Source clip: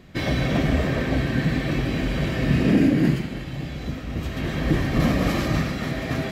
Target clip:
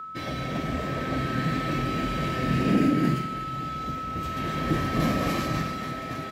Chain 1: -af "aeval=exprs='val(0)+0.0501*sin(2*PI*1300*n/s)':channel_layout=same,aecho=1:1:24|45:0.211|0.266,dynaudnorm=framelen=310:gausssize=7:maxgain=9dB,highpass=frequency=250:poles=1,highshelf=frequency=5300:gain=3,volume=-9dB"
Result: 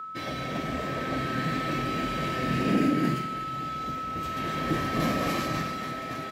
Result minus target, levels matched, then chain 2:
125 Hz band −2.5 dB
-af "aeval=exprs='val(0)+0.0501*sin(2*PI*1300*n/s)':channel_layout=same,aecho=1:1:24|45:0.211|0.266,dynaudnorm=framelen=310:gausssize=7:maxgain=9dB,highpass=frequency=100:poles=1,highshelf=frequency=5300:gain=3,volume=-9dB"

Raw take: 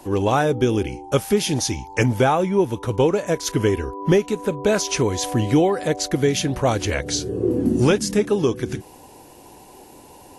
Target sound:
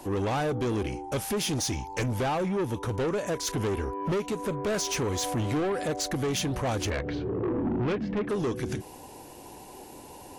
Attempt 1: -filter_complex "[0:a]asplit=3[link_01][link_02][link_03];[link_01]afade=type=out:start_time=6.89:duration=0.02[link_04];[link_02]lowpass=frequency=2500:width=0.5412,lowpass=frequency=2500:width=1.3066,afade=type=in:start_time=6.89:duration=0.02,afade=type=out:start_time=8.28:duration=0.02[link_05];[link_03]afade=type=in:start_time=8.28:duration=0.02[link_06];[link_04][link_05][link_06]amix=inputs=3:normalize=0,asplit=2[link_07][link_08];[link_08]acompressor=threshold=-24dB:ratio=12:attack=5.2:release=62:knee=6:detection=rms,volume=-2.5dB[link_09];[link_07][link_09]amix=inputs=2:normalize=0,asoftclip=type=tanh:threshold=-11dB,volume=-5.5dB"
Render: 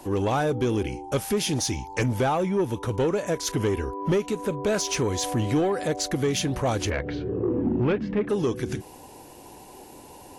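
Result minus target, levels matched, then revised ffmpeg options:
soft clipping: distortion −8 dB
-filter_complex "[0:a]asplit=3[link_01][link_02][link_03];[link_01]afade=type=out:start_time=6.89:duration=0.02[link_04];[link_02]lowpass=frequency=2500:width=0.5412,lowpass=frequency=2500:width=1.3066,afade=type=in:start_time=6.89:duration=0.02,afade=type=out:start_time=8.28:duration=0.02[link_05];[link_03]afade=type=in:start_time=8.28:duration=0.02[link_06];[link_04][link_05][link_06]amix=inputs=3:normalize=0,asplit=2[link_07][link_08];[link_08]acompressor=threshold=-24dB:ratio=12:attack=5.2:release=62:knee=6:detection=rms,volume=-2.5dB[link_09];[link_07][link_09]amix=inputs=2:normalize=0,asoftclip=type=tanh:threshold=-19dB,volume=-5.5dB"

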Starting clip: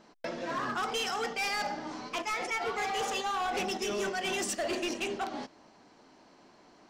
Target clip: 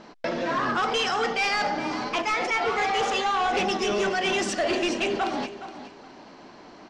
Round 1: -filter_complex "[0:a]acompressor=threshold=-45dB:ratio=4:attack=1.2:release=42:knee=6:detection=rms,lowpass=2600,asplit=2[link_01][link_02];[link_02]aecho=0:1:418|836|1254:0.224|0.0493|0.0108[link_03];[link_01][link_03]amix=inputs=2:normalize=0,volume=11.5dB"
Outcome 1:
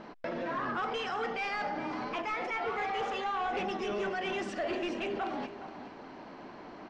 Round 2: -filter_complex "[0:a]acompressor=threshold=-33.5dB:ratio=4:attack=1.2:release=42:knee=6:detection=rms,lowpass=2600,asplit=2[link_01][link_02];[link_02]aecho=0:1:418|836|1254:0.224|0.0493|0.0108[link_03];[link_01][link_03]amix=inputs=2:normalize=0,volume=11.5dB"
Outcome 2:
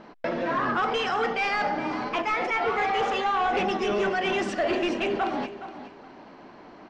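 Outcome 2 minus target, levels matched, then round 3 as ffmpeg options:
4,000 Hz band −4.0 dB
-filter_complex "[0:a]acompressor=threshold=-33.5dB:ratio=4:attack=1.2:release=42:knee=6:detection=rms,lowpass=5200,asplit=2[link_01][link_02];[link_02]aecho=0:1:418|836|1254:0.224|0.0493|0.0108[link_03];[link_01][link_03]amix=inputs=2:normalize=0,volume=11.5dB"

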